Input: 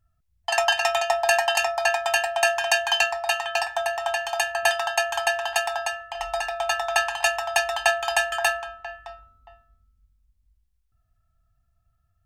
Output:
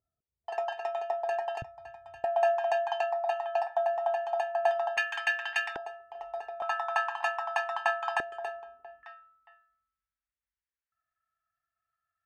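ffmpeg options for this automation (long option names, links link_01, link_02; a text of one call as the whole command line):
ffmpeg -i in.wav -af "asetnsamples=nb_out_samples=441:pad=0,asendcmd='1.62 bandpass f 120;2.24 bandpass f 630;4.97 bandpass f 2000;5.76 bandpass f 420;6.62 bandpass f 1100;8.2 bandpass f 400;9.03 bandpass f 1700',bandpass=frequency=430:width_type=q:width=2.4:csg=0" out.wav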